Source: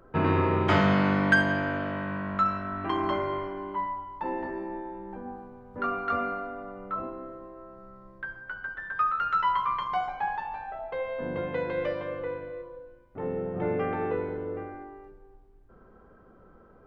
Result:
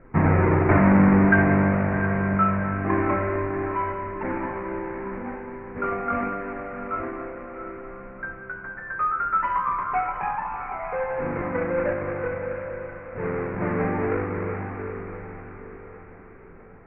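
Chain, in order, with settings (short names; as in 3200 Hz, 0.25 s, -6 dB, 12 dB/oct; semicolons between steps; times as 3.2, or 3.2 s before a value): half-waves squared off; steep low-pass 2300 Hz 72 dB/oct; bell 180 Hz +2.5 dB 0.77 oct; split-band echo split 1200 Hz, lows 0.235 s, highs 0.636 s, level -14 dB; flange 0.47 Hz, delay 0.5 ms, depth 3.3 ms, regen -54%; diffused feedback echo 0.742 s, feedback 41%, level -9 dB; gain +4 dB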